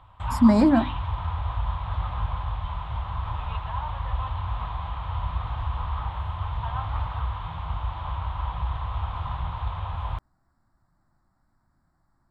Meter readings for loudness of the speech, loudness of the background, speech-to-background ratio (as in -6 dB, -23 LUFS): -19.5 LUFS, -31.5 LUFS, 12.0 dB